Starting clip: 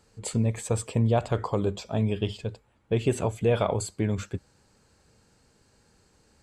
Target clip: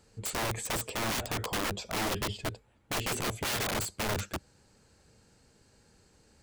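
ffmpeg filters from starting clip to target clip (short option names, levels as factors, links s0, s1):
-af "equalizer=f=1100:t=o:w=0.72:g=-3,aeval=exprs='(mod(21.1*val(0)+1,2)-1)/21.1':c=same"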